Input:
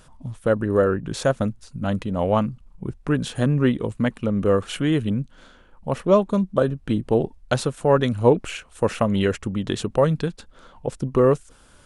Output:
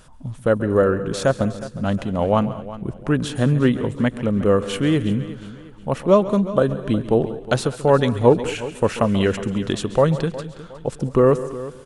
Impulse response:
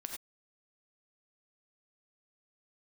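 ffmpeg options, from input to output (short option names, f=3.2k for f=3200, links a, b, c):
-filter_complex "[0:a]deesser=0.5,aecho=1:1:362|724|1086:0.158|0.0586|0.0217,asplit=2[a][b];[1:a]atrim=start_sample=2205,asetrate=57330,aresample=44100,adelay=136[c];[b][c]afir=irnorm=-1:irlink=0,volume=-9.5dB[d];[a][d]amix=inputs=2:normalize=0,volume=2dB"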